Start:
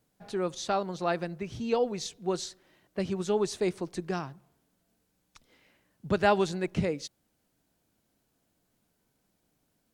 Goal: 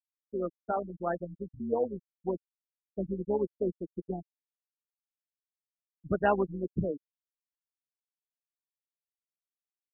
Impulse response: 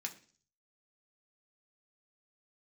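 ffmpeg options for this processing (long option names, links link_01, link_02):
-af "afftfilt=real='re*gte(hypot(re,im),0.112)':imag='im*gte(hypot(re,im),0.112)':win_size=1024:overlap=0.75,tremolo=f=140:d=0.462"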